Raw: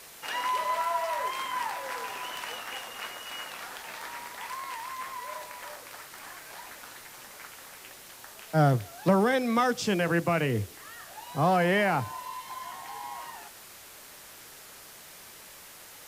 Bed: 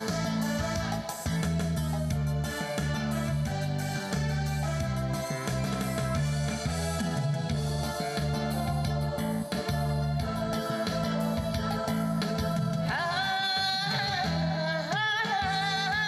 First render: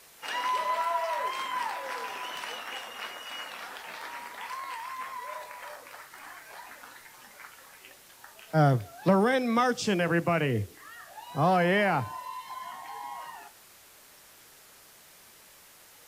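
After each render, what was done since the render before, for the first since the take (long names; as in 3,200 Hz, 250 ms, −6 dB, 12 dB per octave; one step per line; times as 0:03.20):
noise reduction from a noise print 6 dB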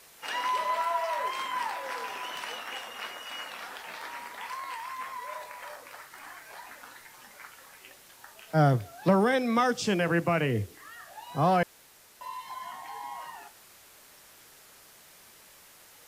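0:11.63–0:12.21: fill with room tone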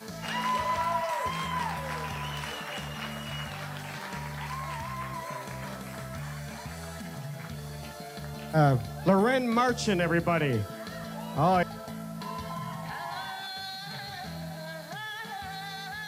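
mix in bed −10 dB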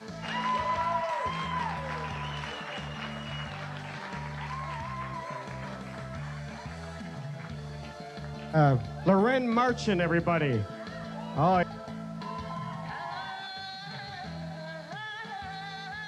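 high-frequency loss of the air 99 metres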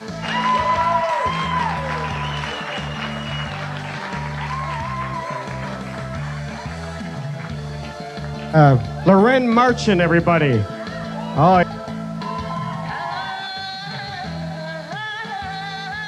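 level +11 dB
brickwall limiter −1 dBFS, peak gain reduction 1 dB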